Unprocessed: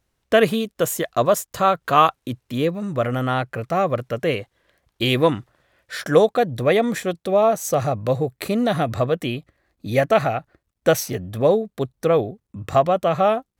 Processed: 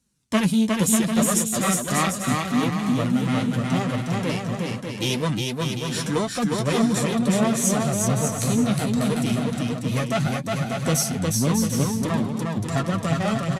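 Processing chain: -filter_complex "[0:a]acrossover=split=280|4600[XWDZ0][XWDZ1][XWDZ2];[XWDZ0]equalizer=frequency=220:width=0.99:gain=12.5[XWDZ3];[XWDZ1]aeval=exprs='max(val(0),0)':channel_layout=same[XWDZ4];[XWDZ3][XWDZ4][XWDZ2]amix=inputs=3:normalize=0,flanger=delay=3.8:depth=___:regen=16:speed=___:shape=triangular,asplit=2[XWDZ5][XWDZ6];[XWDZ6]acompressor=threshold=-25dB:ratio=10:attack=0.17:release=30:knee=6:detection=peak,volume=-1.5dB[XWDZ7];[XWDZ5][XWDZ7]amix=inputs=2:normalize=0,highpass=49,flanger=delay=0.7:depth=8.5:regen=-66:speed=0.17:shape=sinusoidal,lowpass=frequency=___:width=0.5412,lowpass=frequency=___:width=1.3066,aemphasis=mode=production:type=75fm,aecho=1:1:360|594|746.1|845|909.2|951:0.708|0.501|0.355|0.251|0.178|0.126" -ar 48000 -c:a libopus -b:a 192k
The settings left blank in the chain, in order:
10, 0.77, 9600, 9600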